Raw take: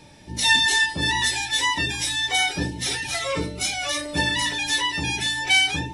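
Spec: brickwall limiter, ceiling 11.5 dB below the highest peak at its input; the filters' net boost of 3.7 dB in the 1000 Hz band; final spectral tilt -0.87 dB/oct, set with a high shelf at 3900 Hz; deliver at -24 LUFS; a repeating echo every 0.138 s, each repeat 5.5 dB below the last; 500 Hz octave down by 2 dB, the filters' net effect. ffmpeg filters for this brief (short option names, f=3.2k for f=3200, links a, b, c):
-af "equalizer=f=500:t=o:g=-4,equalizer=f=1k:t=o:g=5,highshelf=f=3.9k:g=7.5,alimiter=limit=-14.5dB:level=0:latency=1,aecho=1:1:138|276|414|552|690|828|966:0.531|0.281|0.149|0.079|0.0419|0.0222|0.0118,volume=-3.5dB"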